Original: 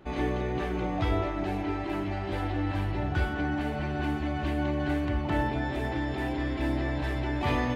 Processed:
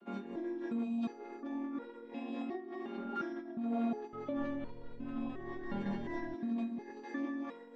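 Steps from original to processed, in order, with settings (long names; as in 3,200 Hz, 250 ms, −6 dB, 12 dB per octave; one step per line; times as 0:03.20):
channel vocoder with a chord as carrier minor triad, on A#3
0:00.83–0:01.04: gain on a spectral selection 230–2,400 Hz −16 dB
compressor whose output falls as the input rises −35 dBFS, ratio −1
0:03.89–0:06.35: echo with shifted repeats 236 ms, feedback 42%, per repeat −120 Hz, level −4 dB
step-sequenced resonator 2.8 Hz 200–480 Hz
level +11.5 dB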